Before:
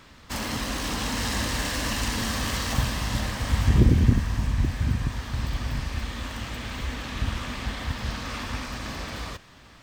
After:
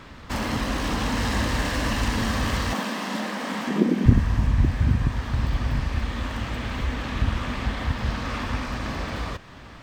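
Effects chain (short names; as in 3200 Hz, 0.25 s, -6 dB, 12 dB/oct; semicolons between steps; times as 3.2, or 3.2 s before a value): 2.73–4.06 elliptic high-pass 190 Hz; in parallel at -2.5 dB: compressor, threshold -41 dBFS, peak gain reduction 26 dB; on the sum: high shelf 3500 Hz -11 dB; gain +3.5 dB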